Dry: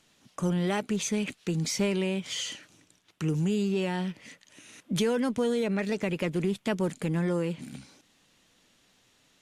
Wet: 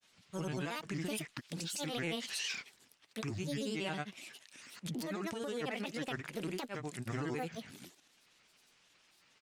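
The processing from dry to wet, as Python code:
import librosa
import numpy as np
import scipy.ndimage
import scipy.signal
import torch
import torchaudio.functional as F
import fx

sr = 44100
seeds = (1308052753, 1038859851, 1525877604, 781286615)

y = fx.low_shelf(x, sr, hz=490.0, db=-11.5)
y = fx.over_compress(y, sr, threshold_db=-35.0, ratio=-1.0)
y = fx.granulator(y, sr, seeds[0], grain_ms=100.0, per_s=22.0, spray_ms=100.0, spread_st=7)
y = F.gain(torch.from_numpy(y), -1.0).numpy()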